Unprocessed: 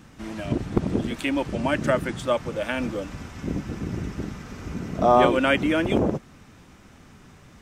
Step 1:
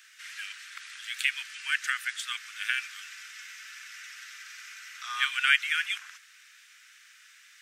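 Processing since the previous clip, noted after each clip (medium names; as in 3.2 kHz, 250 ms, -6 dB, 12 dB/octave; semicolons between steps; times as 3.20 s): steep high-pass 1.5 kHz 48 dB/octave; trim +3.5 dB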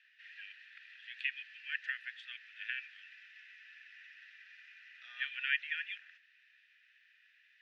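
vowel filter e; resonant high shelf 5.8 kHz -10.5 dB, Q 1.5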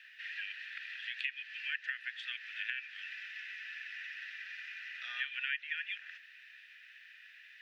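compression 3:1, threshold -49 dBFS, peak gain reduction 16.5 dB; trim +11 dB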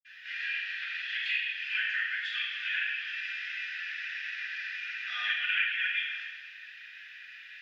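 reverberation RT60 1.1 s, pre-delay 47 ms; trim +7 dB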